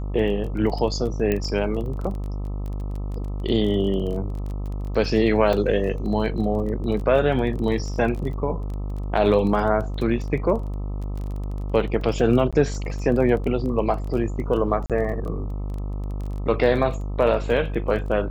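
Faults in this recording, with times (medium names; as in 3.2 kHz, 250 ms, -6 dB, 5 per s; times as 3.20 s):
buzz 50 Hz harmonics 26 -28 dBFS
crackle 17 per s -30 dBFS
1.32 s: pop -11 dBFS
5.53 s: dropout 2.9 ms
12.51–12.53 s: dropout 16 ms
14.86–14.90 s: dropout 37 ms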